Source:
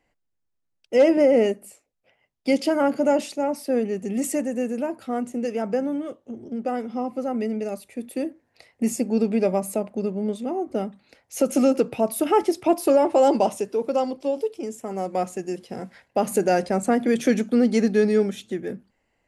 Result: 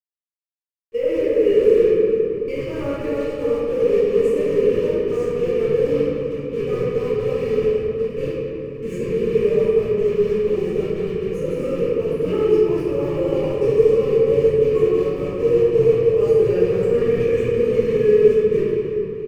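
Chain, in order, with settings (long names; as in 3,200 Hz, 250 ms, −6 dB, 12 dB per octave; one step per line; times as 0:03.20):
low-shelf EQ 180 Hz +11.5 dB
in parallel at +2.5 dB: downward compressor 6 to 1, threshold −29 dBFS, peak gain reduction 17 dB
on the sum: delay with pitch and tempo change per echo 87 ms, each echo −3 semitones, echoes 3, each echo −6 dB
bit reduction 5 bits
noise gate −19 dBFS, range −18 dB
comb filter 1.7 ms, depth 46%
brickwall limiter −10.5 dBFS, peak gain reduction 8.5 dB
drawn EQ curve 110 Hz 0 dB, 220 Hz −20 dB, 450 Hz +3 dB, 670 Hz −30 dB, 1,000 Hz −10 dB, 1,600 Hz −14 dB, 2,600 Hz −5 dB, 3,700 Hz −20 dB, 6,800 Hz −21 dB, 13,000 Hz −27 dB
convolution reverb RT60 2.8 s, pre-delay 5 ms, DRR −11.5 dB
level −5 dB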